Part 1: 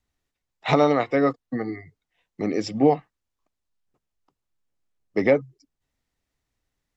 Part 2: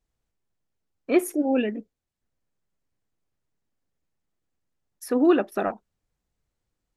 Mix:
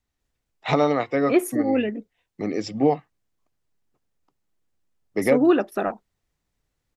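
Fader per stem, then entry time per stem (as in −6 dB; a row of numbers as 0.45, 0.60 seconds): −1.5, +1.0 decibels; 0.00, 0.20 seconds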